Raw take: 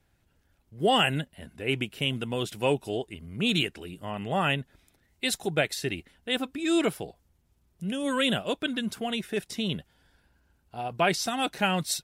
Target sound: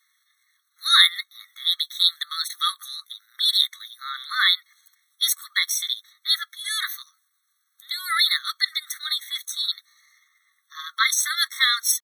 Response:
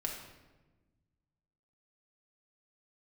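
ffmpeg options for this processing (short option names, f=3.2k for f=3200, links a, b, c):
-af "asetrate=57191,aresample=44100,atempo=0.771105,highshelf=f=2.1k:g=7.5,afftfilt=real='re*eq(mod(floor(b*sr/1024/1100),2),1)':imag='im*eq(mod(floor(b*sr/1024/1100),2),1)':win_size=1024:overlap=0.75,volume=6.5dB"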